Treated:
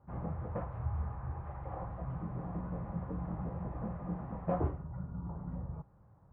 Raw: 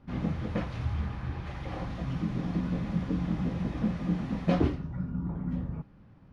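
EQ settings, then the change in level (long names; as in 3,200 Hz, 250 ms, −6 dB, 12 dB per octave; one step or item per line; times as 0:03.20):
high-pass filter 48 Hz
transistor ladder low-pass 1,300 Hz, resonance 25%
parametric band 250 Hz −14 dB 1.1 octaves
+4.0 dB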